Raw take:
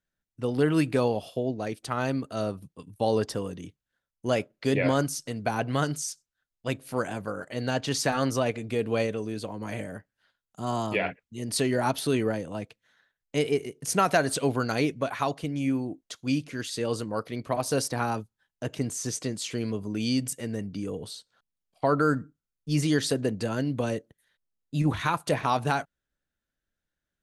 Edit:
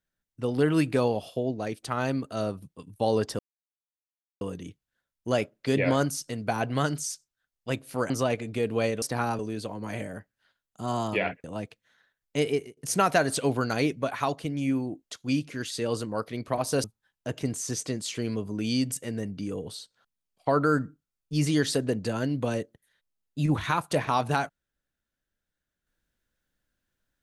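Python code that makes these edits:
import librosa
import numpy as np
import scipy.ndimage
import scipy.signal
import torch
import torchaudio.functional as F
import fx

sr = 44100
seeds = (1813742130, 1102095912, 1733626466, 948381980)

y = fx.edit(x, sr, fx.insert_silence(at_s=3.39, length_s=1.02),
    fx.cut(start_s=7.08, length_s=1.18),
    fx.cut(start_s=11.23, length_s=1.2),
    fx.fade_out_to(start_s=13.5, length_s=0.26, floor_db=-20.5),
    fx.move(start_s=17.83, length_s=0.37, to_s=9.18), tone=tone)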